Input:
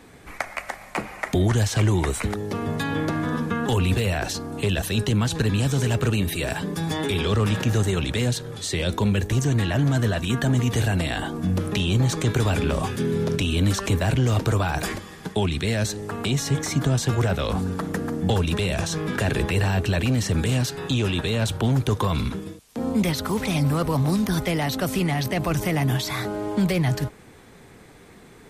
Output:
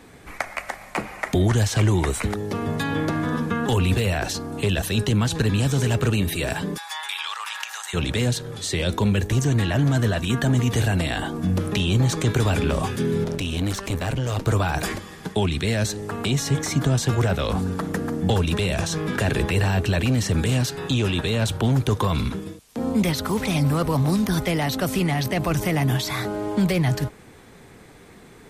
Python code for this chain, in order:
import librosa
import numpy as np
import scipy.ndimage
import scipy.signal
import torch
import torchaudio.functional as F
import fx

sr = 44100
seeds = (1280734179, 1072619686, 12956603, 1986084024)

y = fx.ellip_highpass(x, sr, hz=870.0, order=4, stop_db=80, at=(6.76, 7.93), fade=0.02)
y = fx.tube_stage(y, sr, drive_db=19.0, bias=0.8, at=(13.24, 14.47))
y = y * librosa.db_to_amplitude(1.0)